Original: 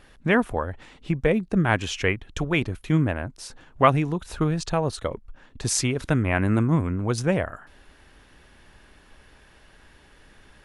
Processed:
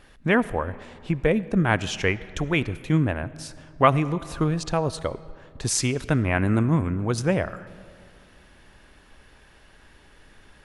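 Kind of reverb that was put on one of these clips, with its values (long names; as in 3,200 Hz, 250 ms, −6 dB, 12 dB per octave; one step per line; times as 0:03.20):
comb and all-pass reverb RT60 2.4 s, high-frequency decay 0.6×, pre-delay 30 ms, DRR 17 dB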